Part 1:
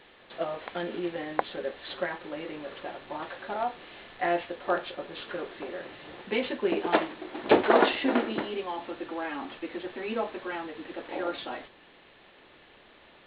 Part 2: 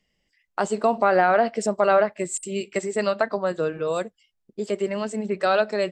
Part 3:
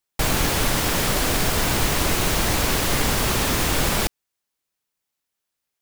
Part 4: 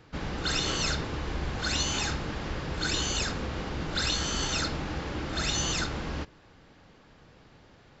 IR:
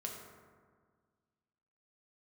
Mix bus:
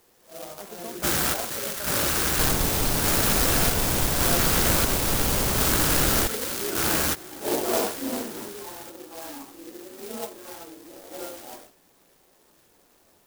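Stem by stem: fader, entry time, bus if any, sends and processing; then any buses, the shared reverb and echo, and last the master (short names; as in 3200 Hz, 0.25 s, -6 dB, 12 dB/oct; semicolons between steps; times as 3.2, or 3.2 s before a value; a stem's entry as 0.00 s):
-4.5 dB, 0.00 s, no send, phase scrambler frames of 0.2 s
-18.5 dB, 0.00 s, no send, dry
-3.0 dB, 2.20 s, no send, dry
+2.0 dB, 0.90 s, no send, HPF 140 Hz 6 dB/oct; band shelf 2100 Hz +13.5 dB; negative-ratio compressor -30 dBFS, ratio -1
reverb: off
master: clock jitter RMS 0.14 ms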